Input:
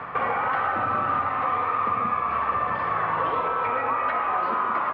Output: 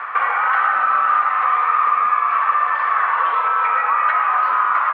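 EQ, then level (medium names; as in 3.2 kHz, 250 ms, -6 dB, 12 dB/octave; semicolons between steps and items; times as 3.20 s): band-pass filter 1.4 kHz, Q 1.5; tilt EQ +3.5 dB/octave; +8.5 dB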